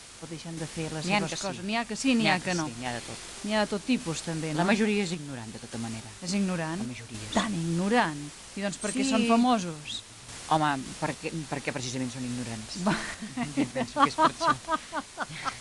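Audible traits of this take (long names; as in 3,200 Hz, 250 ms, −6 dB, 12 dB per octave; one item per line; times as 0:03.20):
a quantiser's noise floor 6 bits, dither triangular
sample-and-hold tremolo
AAC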